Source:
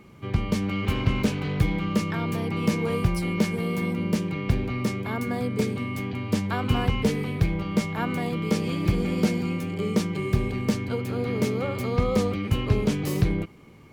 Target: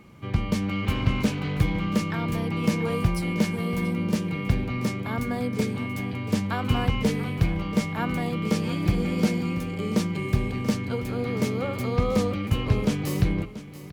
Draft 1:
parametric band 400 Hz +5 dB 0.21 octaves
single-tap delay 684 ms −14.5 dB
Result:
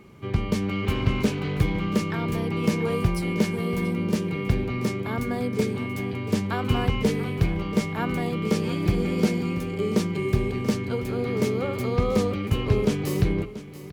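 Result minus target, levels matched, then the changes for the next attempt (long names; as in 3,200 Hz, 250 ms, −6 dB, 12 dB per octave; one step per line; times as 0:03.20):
500 Hz band +3.0 dB
change: parametric band 400 Hz −5.5 dB 0.21 octaves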